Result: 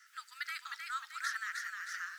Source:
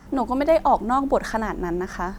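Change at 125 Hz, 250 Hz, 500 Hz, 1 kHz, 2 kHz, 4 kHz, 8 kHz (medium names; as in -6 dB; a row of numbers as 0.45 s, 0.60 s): under -40 dB, under -40 dB, under -40 dB, -21.5 dB, -4.0 dB, -3.5 dB, -3.5 dB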